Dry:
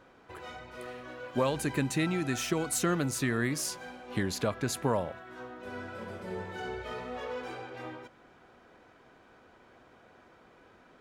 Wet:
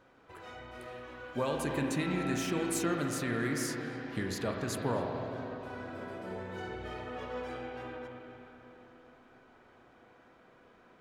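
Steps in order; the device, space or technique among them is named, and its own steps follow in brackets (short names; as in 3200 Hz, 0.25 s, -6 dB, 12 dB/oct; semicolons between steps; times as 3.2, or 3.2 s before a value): dub delay into a spring reverb (darkening echo 0.268 s, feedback 74%, low-pass 2400 Hz, level -18 dB; spring tank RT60 3.3 s, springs 33/42/48 ms, chirp 45 ms, DRR 0.5 dB); gain -5 dB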